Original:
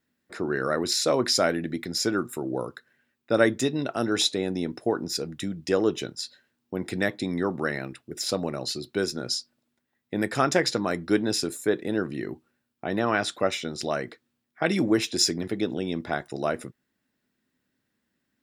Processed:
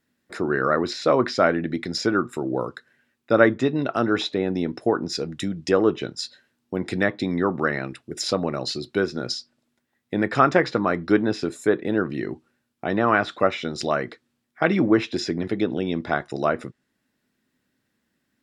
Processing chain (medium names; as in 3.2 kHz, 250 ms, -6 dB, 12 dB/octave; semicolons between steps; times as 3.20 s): low-pass that closes with the level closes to 2.5 kHz, closed at -22 dBFS; dynamic bell 1.2 kHz, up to +5 dB, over -42 dBFS, Q 2.9; trim +4 dB